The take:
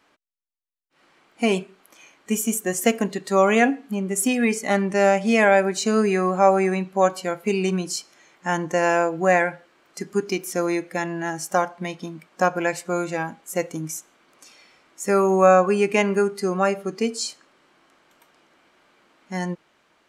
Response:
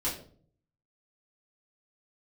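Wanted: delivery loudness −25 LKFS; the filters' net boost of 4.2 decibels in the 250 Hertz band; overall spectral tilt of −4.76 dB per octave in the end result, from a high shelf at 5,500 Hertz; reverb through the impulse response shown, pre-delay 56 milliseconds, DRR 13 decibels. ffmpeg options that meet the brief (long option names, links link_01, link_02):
-filter_complex "[0:a]equalizer=frequency=250:width_type=o:gain=5.5,highshelf=frequency=5500:gain=5.5,asplit=2[link_01][link_02];[1:a]atrim=start_sample=2205,adelay=56[link_03];[link_02][link_03]afir=irnorm=-1:irlink=0,volume=-19dB[link_04];[link_01][link_04]amix=inputs=2:normalize=0,volume=-5.5dB"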